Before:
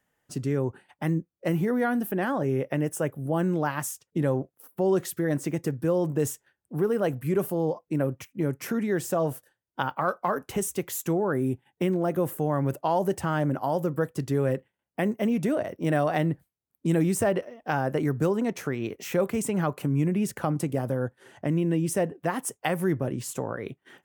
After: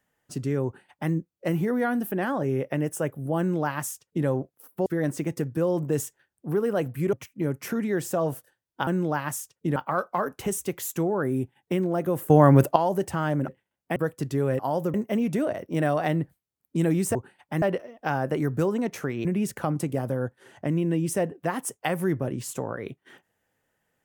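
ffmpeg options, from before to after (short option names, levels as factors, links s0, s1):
-filter_complex "[0:a]asplit=14[s0][s1][s2][s3][s4][s5][s6][s7][s8][s9][s10][s11][s12][s13];[s0]atrim=end=4.862[s14];[s1]atrim=start=5.128:end=7.402[s15];[s2]atrim=start=8.118:end=9.862[s16];[s3]atrim=start=3.378:end=4.272[s17];[s4]atrim=start=9.858:end=12.402[s18];[s5]atrim=start=12.398:end=12.862,asetpts=PTS-STARTPTS,volume=3.35[s19];[s6]atrim=start=12.858:end=13.582[s20];[s7]atrim=start=14.558:end=15.042[s21];[s8]atrim=start=13.928:end=14.562[s22];[s9]atrim=start=13.578:end=13.932[s23];[s10]atrim=start=15.038:end=17.252[s24];[s11]atrim=start=0.648:end=1.122[s25];[s12]atrim=start=17.248:end=18.882[s26];[s13]atrim=start=20.048[s27];[s14][s15]acrossfade=d=0.004:c1=hsin:c2=hsin[s28];[s28][s16]acrossfade=d=0.004:c1=hsin:c2=hsin[s29];[s29][s17]acrossfade=d=0.004:c1=hsin:c2=hsin[s30];[s30][s18]acrossfade=d=0.004:c1=hsin:c2=hsin[s31];[s31][s19]acrossfade=d=0.004:c1=hsin:c2=hsin[s32];[s32][s20]acrossfade=d=0.004:c1=hsin:c2=hsin[s33];[s33][s21]acrossfade=d=0.004:c1=hsin:c2=hsin[s34];[s34][s22]acrossfade=d=0.004:c1=hsin:c2=hsin[s35];[s35][s23]acrossfade=d=0.004:c1=hsin:c2=hsin[s36];[s36][s24]acrossfade=d=0.004:c1=hsin:c2=hsin[s37];[s37][s25]acrossfade=d=0.004:c1=hsin:c2=hsin[s38];[s38][s26]acrossfade=d=0.004:c1=hsin:c2=hsin[s39];[s39][s27]acrossfade=d=0.004:c1=hsin:c2=hsin"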